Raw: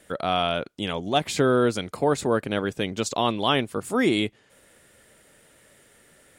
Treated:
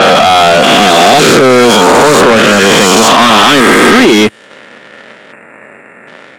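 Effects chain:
peak hold with a rise ahead of every peak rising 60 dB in 2.19 s
in parallel at +1 dB: downward compressor, threshold −28 dBFS, peak gain reduction 14.5 dB
on the sum: leveller curve on the samples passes 3
gain on a spectral selection 0:05.32–0:06.08, 2,800–7,100 Hz −22 dB
mid-hump overdrive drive 21 dB, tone 3,700 Hz, clips at −2 dBFS
high-pass filter 88 Hz 24 dB per octave
parametric band 220 Hz +7.5 dB 0.71 octaves
sine wavefolder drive 4 dB, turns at 2 dBFS
low-pass that shuts in the quiet parts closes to 2,700 Hz, open at 0 dBFS
level −3.5 dB

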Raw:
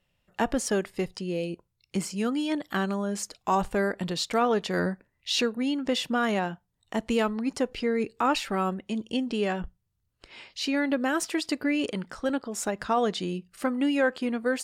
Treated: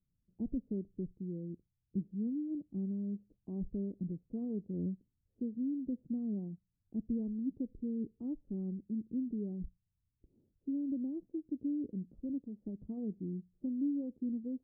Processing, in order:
inverse Chebyshev low-pass filter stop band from 1,800 Hz, stop band 80 dB
level −6 dB

